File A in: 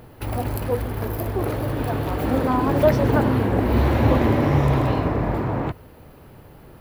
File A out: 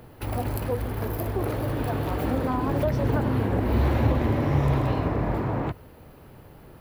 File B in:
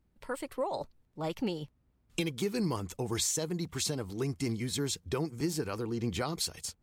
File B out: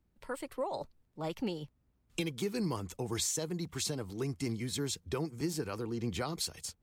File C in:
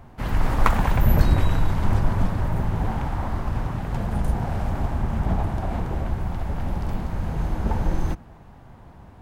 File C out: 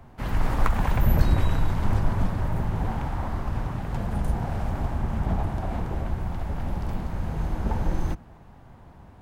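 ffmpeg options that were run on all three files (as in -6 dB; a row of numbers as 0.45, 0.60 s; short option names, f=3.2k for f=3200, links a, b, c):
-filter_complex "[0:a]acrossover=split=150[a][b];[b]acompressor=threshold=-21dB:ratio=5[c];[a][c]amix=inputs=2:normalize=0,volume=-2.5dB"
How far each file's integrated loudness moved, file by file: -4.5, -2.5, -2.5 LU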